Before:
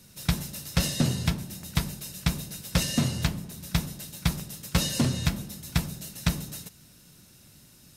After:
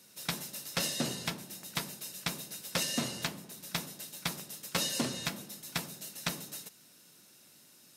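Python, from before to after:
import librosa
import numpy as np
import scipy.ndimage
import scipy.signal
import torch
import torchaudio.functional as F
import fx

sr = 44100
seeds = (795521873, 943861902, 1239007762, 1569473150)

y = scipy.signal.sosfilt(scipy.signal.butter(2, 300.0, 'highpass', fs=sr, output='sos'), x)
y = y * 10.0 ** (-3.0 / 20.0)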